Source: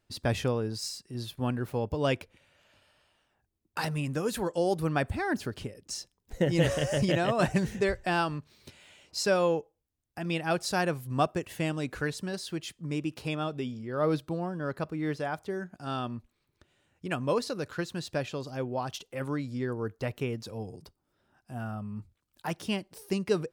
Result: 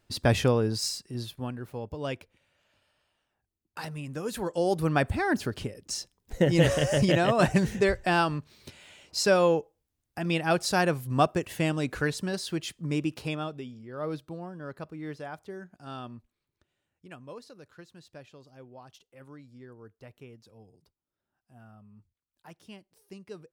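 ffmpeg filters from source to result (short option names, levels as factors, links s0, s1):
-af "volume=5.62,afade=t=out:st=0.89:d=0.61:silence=0.266073,afade=t=in:st=4.07:d=0.9:silence=0.334965,afade=t=out:st=13.03:d=0.62:silence=0.316228,afade=t=out:st=16.07:d=1.2:silence=0.334965"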